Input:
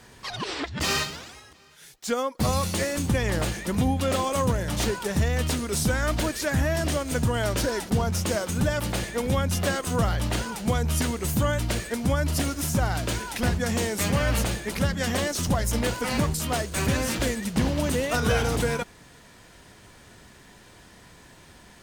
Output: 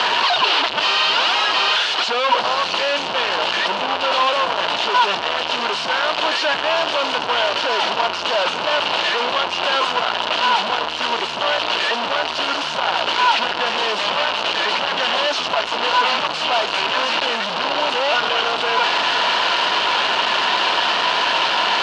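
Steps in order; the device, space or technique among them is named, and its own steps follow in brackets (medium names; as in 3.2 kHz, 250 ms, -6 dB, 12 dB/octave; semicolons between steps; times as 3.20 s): home computer beeper (one-bit comparator; cabinet simulation 540–4400 Hz, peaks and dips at 660 Hz +4 dB, 960 Hz +9 dB, 1.4 kHz +4 dB, 2 kHz -4 dB, 2.9 kHz +10 dB, 4.3 kHz +4 dB); trim +7.5 dB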